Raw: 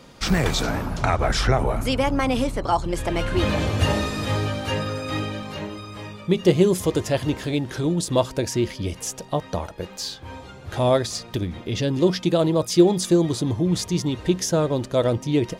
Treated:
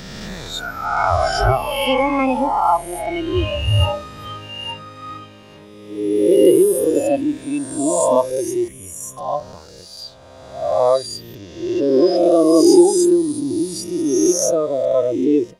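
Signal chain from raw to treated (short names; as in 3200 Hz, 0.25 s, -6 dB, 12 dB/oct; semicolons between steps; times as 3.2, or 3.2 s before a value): spectral swells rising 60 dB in 2.64 s; spectral noise reduction 18 dB; 8.68–9.17 fixed phaser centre 2000 Hz, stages 4; gain +3 dB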